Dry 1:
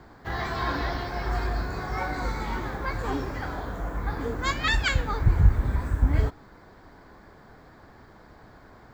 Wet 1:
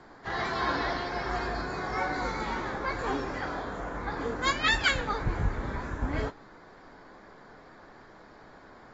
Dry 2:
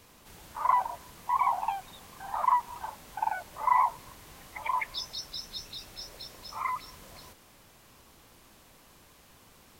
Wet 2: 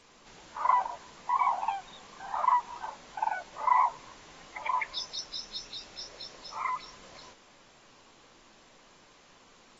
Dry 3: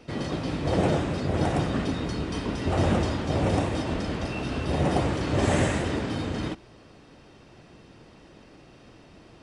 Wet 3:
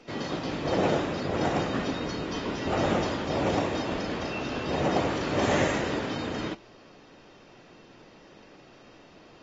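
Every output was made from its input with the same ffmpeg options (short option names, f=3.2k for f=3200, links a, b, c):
-af "equalizer=f=66:t=o:w=2.4:g=-13.5" -ar 32000 -c:a aac -b:a 24k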